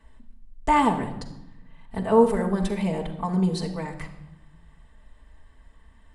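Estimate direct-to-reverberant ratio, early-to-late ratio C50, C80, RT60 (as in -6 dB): -3.5 dB, 9.5 dB, 11.5 dB, 0.90 s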